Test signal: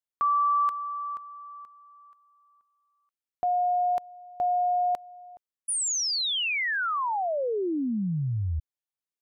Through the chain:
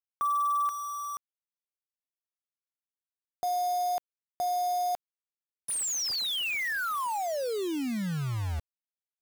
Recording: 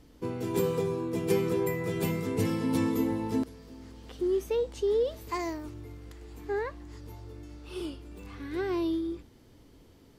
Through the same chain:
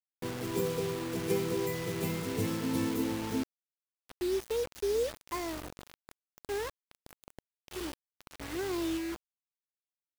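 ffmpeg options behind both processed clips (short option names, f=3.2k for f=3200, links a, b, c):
-af "acrusher=bits=5:mix=0:aa=0.000001,volume=-4dB"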